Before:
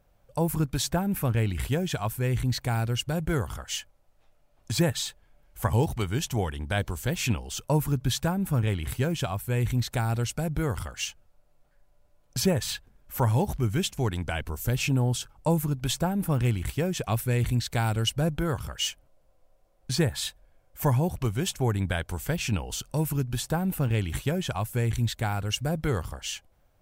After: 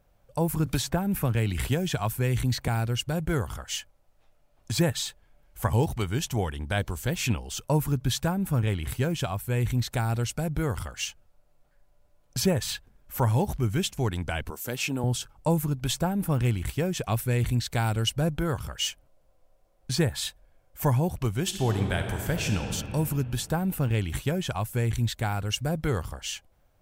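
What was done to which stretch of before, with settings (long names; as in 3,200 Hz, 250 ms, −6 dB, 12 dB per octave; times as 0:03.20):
0:00.66–0:02.68: multiband upward and downward compressor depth 70%
0:14.50–0:15.04: high-pass filter 240 Hz
0:21.42–0:22.69: thrown reverb, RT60 2.7 s, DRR 4 dB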